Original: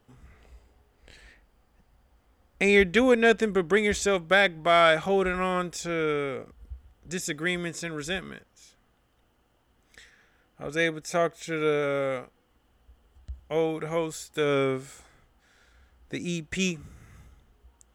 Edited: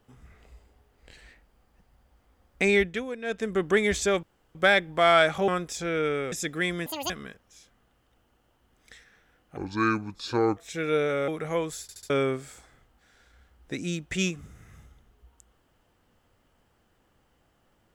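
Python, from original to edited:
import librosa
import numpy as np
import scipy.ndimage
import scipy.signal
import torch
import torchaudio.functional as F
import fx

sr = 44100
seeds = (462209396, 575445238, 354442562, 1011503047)

y = fx.edit(x, sr, fx.fade_down_up(start_s=2.64, length_s=1.01, db=-15.0, fade_s=0.41),
    fx.insert_room_tone(at_s=4.23, length_s=0.32),
    fx.cut(start_s=5.16, length_s=0.36),
    fx.cut(start_s=6.36, length_s=0.81),
    fx.speed_span(start_s=7.71, length_s=0.45, speed=1.88),
    fx.speed_span(start_s=10.63, length_s=0.67, speed=0.67),
    fx.cut(start_s=12.01, length_s=1.68),
    fx.stutter_over(start_s=14.23, slice_s=0.07, count=4), tone=tone)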